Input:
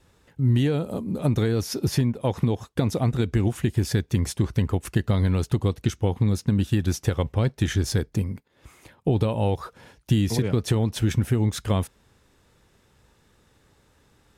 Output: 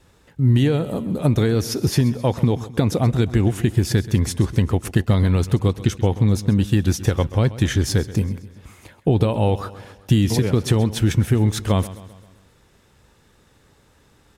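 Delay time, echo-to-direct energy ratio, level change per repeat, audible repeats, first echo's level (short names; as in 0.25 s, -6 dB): 0.131 s, -15.0 dB, -5.5 dB, 4, -16.5 dB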